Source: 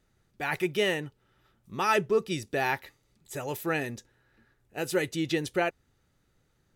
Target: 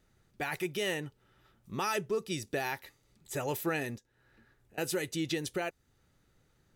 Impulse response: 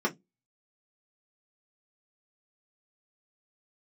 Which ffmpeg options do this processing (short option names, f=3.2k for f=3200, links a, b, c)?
-filter_complex "[0:a]acrossover=split=4500[a][b];[a]alimiter=level_in=0.5dB:limit=-24dB:level=0:latency=1:release=361,volume=-0.5dB[c];[c][b]amix=inputs=2:normalize=0,asettb=1/sr,asplit=3[d][e][f];[d]atrim=end=3.974[g];[e]atrim=start=3.97:end=4.78,asetpts=PTS-STARTPTS,afade=t=in:d=0.004:c=qsin,afade=t=out:st=0.806:d=0.004:c=qsin,acompressor=threshold=-58dB:ratio=12[h];[f]atrim=start=4.776[i];[g][h]acrossfade=d=0.004:c1=hsin:c2=qsin[j];[j][i]acrossfade=d=0.004:c1=qsin:c2=hsin,volume=1dB"